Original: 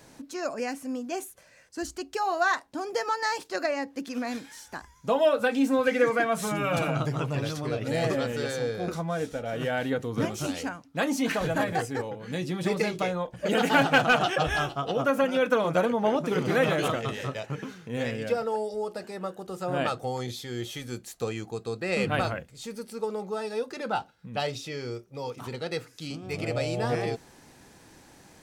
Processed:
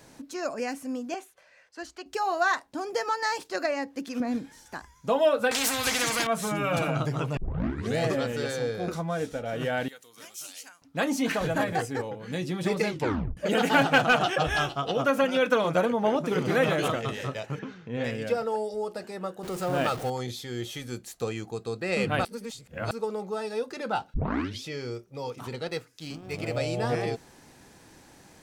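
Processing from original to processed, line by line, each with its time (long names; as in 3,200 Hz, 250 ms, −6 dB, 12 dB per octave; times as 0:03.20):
0:01.14–0:02.06: three-way crossover with the lows and the highs turned down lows −15 dB, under 450 Hz, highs −14 dB, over 4,700 Hz
0:04.20–0:04.66: tilt shelving filter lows +8 dB, about 640 Hz
0:05.51–0:06.27: every bin compressed towards the loudest bin 4 to 1
0:07.37: tape start 0.61 s
0:09.88–0:10.82: first difference
0:12.91: tape stop 0.46 s
0:14.56–0:15.74: parametric band 3,900 Hz +4 dB 2.1 octaves
0:17.59–0:18.04: high-frequency loss of the air 150 metres
0:19.43–0:20.10: converter with a step at zero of −34.5 dBFS
0:22.25–0:22.91: reverse
0:24.14: tape start 0.50 s
0:25.68–0:26.57: mu-law and A-law mismatch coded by A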